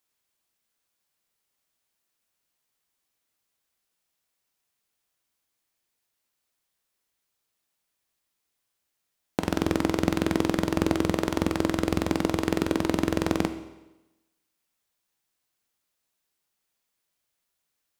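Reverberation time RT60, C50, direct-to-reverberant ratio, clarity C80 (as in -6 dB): 1.0 s, 11.5 dB, 9.0 dB, 13.5 dB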